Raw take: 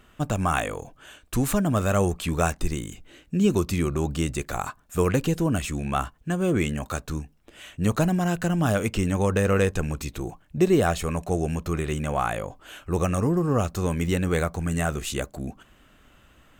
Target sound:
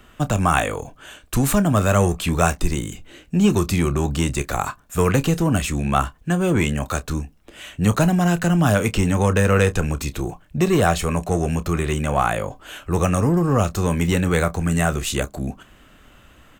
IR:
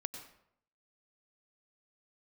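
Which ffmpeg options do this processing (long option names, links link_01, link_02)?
-filter_complex "[0:a]acrossover=split=230|530|4500[link_01][link_02][link_03][link_04];[link_02]asoftclip=type=tanh:threshold=-30dB[link_05];[link_01][link_05][link_03][link_04]amix=inputs=4:normalize=0,asplit=2[link_06][link_07];[link_07]adelay=29,volume=-14dB[link_08];[link_06][link_08]amix=inputs=2:normalize=0,volume=6dB"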